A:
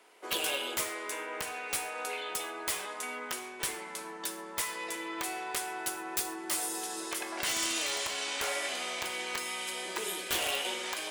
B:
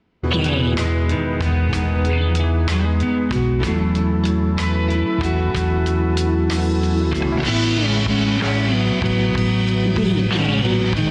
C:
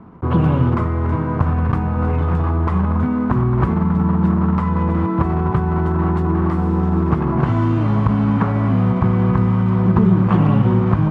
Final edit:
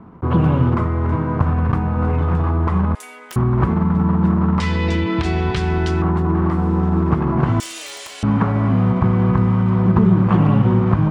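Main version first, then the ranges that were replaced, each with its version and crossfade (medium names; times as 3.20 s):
C
2.95–3.36 s: from A
4.60–6.02 s: from B
7.60–8.23 s: from A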